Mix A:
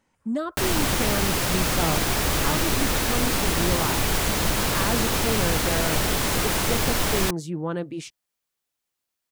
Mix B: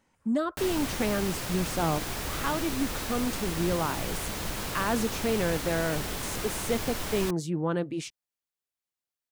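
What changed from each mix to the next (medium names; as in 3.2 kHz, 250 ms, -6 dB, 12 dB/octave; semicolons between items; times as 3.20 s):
background -10.5 dB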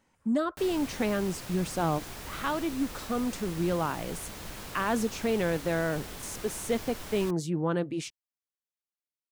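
background -8.0 dB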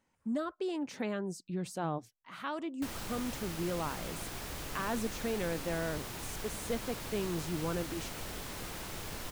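speech -7.0 dB; background: entry +2.25 s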